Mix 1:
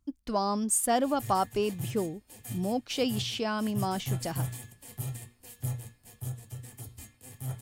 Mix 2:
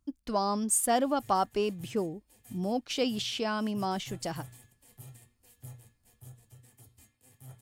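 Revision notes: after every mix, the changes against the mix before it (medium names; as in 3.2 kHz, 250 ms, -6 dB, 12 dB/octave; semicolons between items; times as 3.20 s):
background -11.5 dB; master: add bass shelf 170 Hz -3 dB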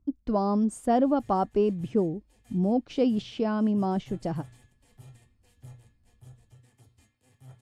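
speech: add tilt shelf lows +9 dB, about 920 Hz; master: add distance through air 70 m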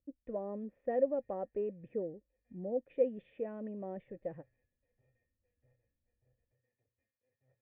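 background -8.5 dB; master: add cascade formant filter e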